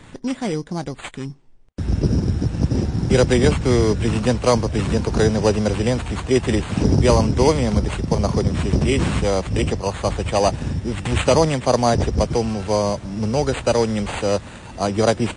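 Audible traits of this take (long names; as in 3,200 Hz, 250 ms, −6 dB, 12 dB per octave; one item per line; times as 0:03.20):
aliases and images of a low sample rate 5,400 Hz, jitter 0%
MP3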